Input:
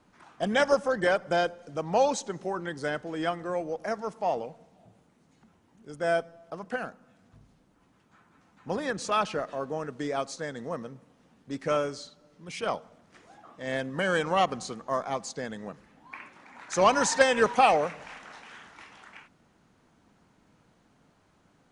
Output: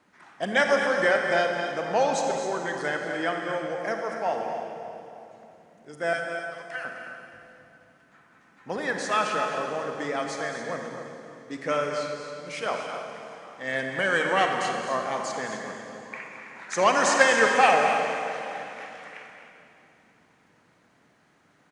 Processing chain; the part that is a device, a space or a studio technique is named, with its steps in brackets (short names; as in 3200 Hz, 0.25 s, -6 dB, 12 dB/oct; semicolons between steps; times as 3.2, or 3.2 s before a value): 6.13–6.85 HPF 1400 Hz 12 dB/oct; stadium PA (HPF 220 Hz 6 dB/oct; bell 1900 Hz +7 dB 0.62 oct; loudspeakers at several distances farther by 75 m -11 dB, 89 m -11 dB; reverb RT60 3.0 s, pre-delay 33 ms, DRR 3 dB)